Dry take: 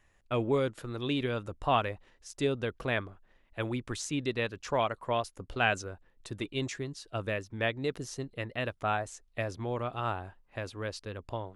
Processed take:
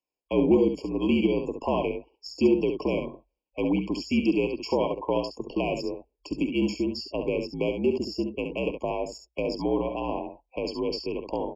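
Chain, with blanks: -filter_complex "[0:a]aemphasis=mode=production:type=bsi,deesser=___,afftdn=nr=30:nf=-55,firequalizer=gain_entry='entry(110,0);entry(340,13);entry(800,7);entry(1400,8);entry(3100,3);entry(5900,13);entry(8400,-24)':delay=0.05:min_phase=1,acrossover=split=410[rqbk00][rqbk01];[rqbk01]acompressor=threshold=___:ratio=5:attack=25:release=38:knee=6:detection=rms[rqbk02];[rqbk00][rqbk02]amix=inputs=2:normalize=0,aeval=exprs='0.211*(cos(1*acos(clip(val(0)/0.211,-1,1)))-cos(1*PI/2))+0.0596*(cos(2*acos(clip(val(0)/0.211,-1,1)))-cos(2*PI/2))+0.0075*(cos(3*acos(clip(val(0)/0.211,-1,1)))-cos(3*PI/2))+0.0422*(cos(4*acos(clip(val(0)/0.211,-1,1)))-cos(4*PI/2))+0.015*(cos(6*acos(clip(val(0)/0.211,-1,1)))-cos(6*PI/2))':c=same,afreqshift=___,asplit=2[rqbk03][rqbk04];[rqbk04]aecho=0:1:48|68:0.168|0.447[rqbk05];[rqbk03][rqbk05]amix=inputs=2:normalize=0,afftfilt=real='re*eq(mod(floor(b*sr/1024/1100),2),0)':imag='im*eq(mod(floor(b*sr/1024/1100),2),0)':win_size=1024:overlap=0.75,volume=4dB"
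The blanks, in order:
0.8, -35dB, -58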